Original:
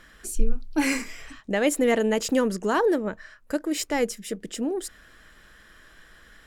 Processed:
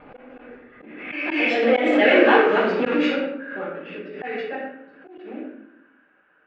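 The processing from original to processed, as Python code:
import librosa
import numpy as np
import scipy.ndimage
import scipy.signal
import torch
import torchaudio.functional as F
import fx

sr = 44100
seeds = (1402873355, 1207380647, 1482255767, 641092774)

y = fx.block_reorder(x, sr, ms=152.0, group=5)
y = fx.doppler_pass(y, sr, speed_mps=31, closest_m=18.0, pass_at_s=2.2)
y = fx.quant_float(y, sr, bits=2)
y = 10.0 ** (-21.0 / 20.0) * np.tanh(y / 10.0 ** (-21.0 / 20.0))
y = fx.cabinet(y, sr, low_hz=390.0, low_slope=12, high_hz=3300.0, hz=(1000.0, 1600.0, 2500.0), db=(-6, 4, 8))
y = fx.room_shoebox(y, sr, seeds[0], volume_m3=250.0, walls='mixed', distance_m=5.5)
y = fx.env_lowpass(y, sr, base_hz=1200.0, full_db=-13.0)
y = fx.auto_swell(y, sr, attack_ms=169.0)
y = fx.pre_swell(y, sr, db_per_s=49.0)
y = F.gain(torch.from_numpy(y), -1.0).numpy()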